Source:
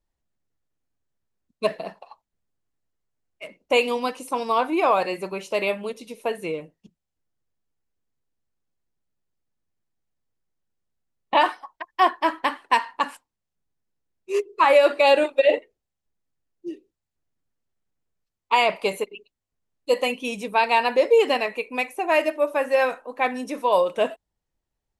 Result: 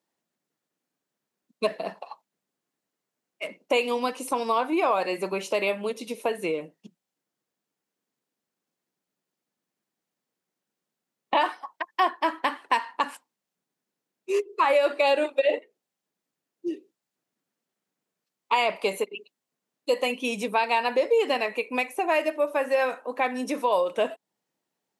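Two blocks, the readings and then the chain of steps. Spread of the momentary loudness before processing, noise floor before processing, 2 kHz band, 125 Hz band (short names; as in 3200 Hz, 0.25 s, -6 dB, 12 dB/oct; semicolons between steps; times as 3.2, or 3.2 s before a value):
14 LU, -84 dBFS, -3.5 dB, n/a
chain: HPF 180 Hz 24 dB/oct; compressor 2:1, threshold -32 dBFS, peak gain reduction 11.5 dB; gain +5 dB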